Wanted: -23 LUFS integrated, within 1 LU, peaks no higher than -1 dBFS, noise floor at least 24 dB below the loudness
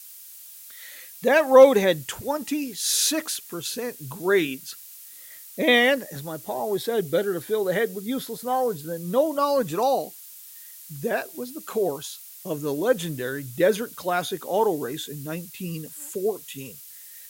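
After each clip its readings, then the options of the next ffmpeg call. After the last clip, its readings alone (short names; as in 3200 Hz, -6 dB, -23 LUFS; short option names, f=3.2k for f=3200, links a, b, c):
noise floor -44 dBFS; noise floor target -48 dBFS; loudness -24.0 LUFS; peak -2.5 dBFS; loudness target -23.0 LUFS
-> -af "afftdn=nr=6:nf=-44"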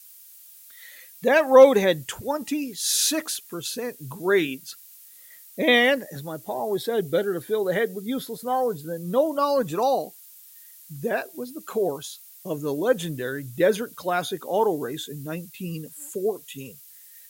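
noise floor -49 dBFS; loudness -24.0 LUFS; peak -3.0 dBFS; loudness target -23.0 LUFS
-> -af "volume=1dB"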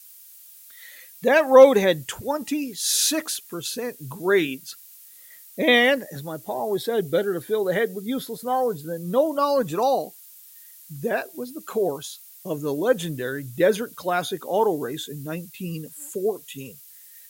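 loudness -23.0 LUFS; peak -2.0 dBFS; noise floor -48 dBFS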